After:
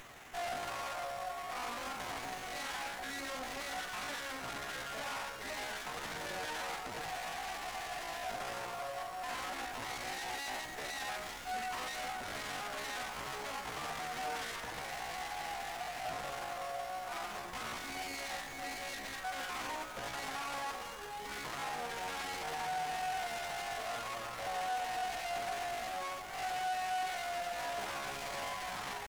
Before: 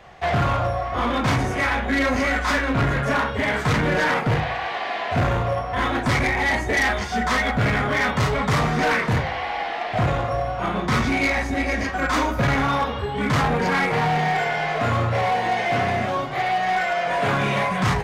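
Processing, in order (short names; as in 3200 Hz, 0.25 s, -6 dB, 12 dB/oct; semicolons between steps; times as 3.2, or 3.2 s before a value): delta modulation 64 kbps, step -43.5 dBFS; dynamic EQ 750 Hz, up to +6 dB, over -39 dBFS, Q 4.5; tempo 0.62×; HPF 190 Hz 6 dB/oct; differentiator; running maximum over 9 samples; gain +2.5 dB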